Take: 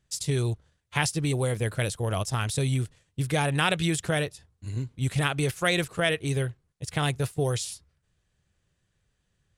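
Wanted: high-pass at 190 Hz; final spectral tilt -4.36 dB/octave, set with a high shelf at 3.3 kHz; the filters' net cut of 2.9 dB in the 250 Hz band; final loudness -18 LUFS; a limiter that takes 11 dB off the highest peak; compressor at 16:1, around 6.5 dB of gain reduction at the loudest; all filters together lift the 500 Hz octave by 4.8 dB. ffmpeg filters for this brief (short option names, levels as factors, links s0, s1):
-af "highpass=190,equalizer=f=250:t=o:g=-4,equalizer=f=500:t=o:g=7,highshelf=f=3300:g=-3,acompressor=threshold=0.0631:ratio=16,volume=5.62,alimiter=limit=0.531:level=0:latency=1"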